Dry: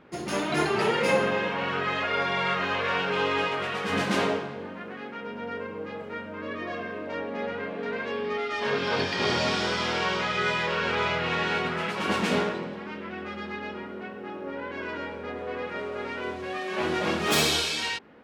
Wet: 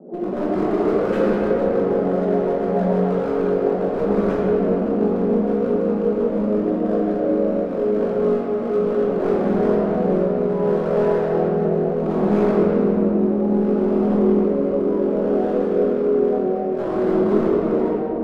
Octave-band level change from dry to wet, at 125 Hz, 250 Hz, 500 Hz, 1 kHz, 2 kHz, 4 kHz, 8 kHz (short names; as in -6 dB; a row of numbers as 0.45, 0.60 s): +10.5 dB, +14.0 dB, +12.5 dB, +1.0 dB, -10.0 dB, under -15 dB, under -15 dB